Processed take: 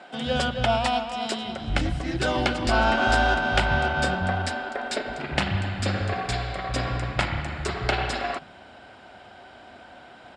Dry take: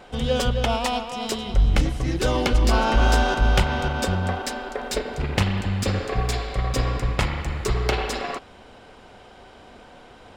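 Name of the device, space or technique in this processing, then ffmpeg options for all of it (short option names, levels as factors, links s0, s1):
car door speaker: -filter_complex "[0:a]highpass=88,equalizer=f=460:t=q:w=4:g=-9,equalizer=f=670:t=q:w=4:g=5,equalizer=f=1100:t=q:w=4:g=-4,equalizer=f=1500:t=q:w=4:g=5,equalizer=f=6200:t=q:w=4:g=-8,lowpass=f=8400:w=0.5412,lowpass=f=8400:w=1.3066,asettb=1/sr,asplit=3[s0][s1][s2];[s0]atrim=end=3.604[s3];[s1]atrim=start=3.6:end=4.22,asetpts=PTS-STARTPTS,afade=t=in:d=0.004:c=qsin,afade=t=out:st=0.616:d=0.004:c=qsin,asplit=2[s4][s5];[s5]adelay=26,volume=0.355[s6];[s4][s6]amix=inputs=2:normalize=0,atrim=end_sample=27342[s7];[s2]atrim=start=4.216[s8];[s3][s7]acrossfade=d=0.004:c1=hsin:c2=qsin[s9];[s9][s8]acrossfade=d=0.004:c1=qsin:c2=hsin,acrossover=split=170[s10][s11];[s10]adelay=130[s12];[s12][s11]amix=inputs=2:normalize=0"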